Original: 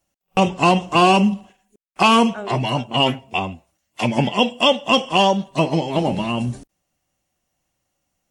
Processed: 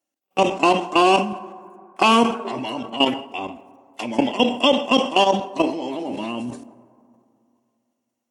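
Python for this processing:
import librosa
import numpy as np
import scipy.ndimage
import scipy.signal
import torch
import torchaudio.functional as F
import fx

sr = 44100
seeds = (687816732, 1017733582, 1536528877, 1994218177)

y = scipy.signal.sosfilt(scipy.signal.butter(2, 93.0, 'highpass', fs=sr, output='sos'), x)
y = fx.low_shelf_res(y, sr, hz=210.0, db=-8.0, q=3.0)
y = fx.level_steps(y, sr, step_db=14)
y = fx.rev_plate(y, sr, seeds[0], rt60_s=2.5, hf_ratio=0.35, predelay_ms=0, drr_db=15.0)
y = fx.sustainer(y, sr, db_per_s=110.0)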